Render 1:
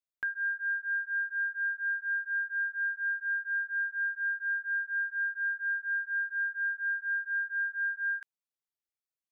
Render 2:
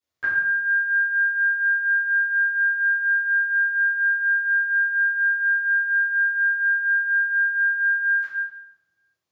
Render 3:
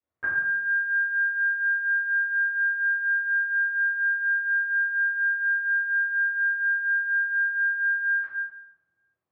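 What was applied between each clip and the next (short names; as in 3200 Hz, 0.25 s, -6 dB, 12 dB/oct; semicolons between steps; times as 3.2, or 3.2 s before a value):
reverb RT60 1.1 s, pre-delay 3 ms, DRR -17.5 dB; gain -2.5 dB
LPF 1500 Hz 12 dB/oct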